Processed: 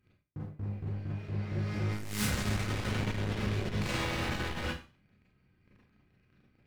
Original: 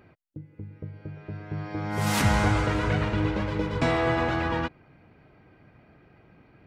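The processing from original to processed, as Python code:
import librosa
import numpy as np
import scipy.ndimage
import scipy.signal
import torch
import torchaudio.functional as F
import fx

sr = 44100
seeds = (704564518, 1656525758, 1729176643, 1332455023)

p1 = fx.tone_stack(x, sr, knobs='6-0-2')
p2 = fx.leveller(p1, sr, passes=3)
p3 = fx.fold_sine(p2, sr, drive_db=12, ceiling_db=-25.0)
p4 = p2 + (p3 * librosa.db_to_amplitude(-11.0))
p5 = fx.rev_schroeder(p4, sr, rt60_s=0.35, comb_ms=30, drr_db=-5.5)
p6 = fx.transformer_sat(p5, sr, knee_hz=110.0)
y = p6 * librosa.db_to_amplitude(-4.0)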